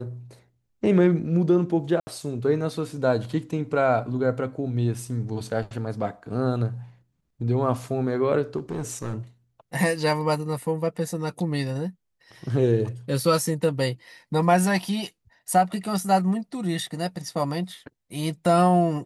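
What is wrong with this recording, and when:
2.00–2.07 s: dropout 70 ms
8.57–9.18 s: clipped -25 dBFS

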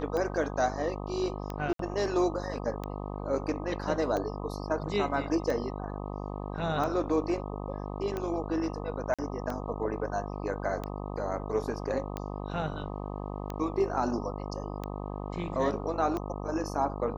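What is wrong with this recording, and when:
buzz 50 Hz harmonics 25 -37 dBFS
tick 45 rpm -21 dBFS
1.73–1.79 s: dropout 63 ms
9.14–9.19 s: dropout 46 ms

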